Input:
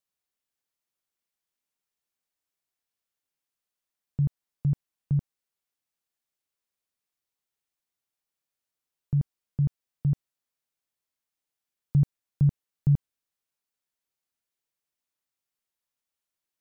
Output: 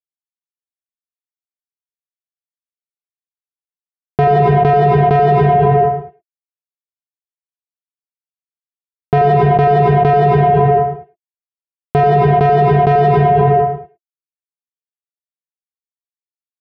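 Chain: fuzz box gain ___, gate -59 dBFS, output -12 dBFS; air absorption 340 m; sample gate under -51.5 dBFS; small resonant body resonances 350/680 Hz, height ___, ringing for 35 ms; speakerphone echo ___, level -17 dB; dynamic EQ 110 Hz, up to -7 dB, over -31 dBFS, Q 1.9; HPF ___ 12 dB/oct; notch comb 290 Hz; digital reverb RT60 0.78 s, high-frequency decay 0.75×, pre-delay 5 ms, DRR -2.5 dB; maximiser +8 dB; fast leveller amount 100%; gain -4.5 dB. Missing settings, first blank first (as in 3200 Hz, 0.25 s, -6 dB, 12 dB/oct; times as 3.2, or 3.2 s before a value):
52 dB, 17 dB, 0.11 s, 58 Hz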